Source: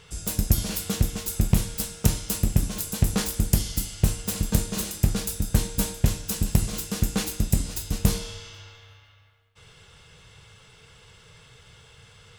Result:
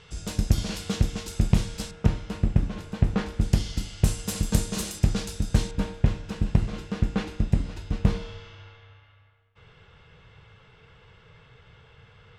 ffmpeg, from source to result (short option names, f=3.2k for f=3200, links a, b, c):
-af "asetnsamples=n=441:p=0,asendcmd='1.91 lowpass f 2200;3.41 lowpass f 4500;4.04 lowpass f 9500;4.99 lowpass f 5700;5.71 lowpass f 2400',lowpass=5.4k"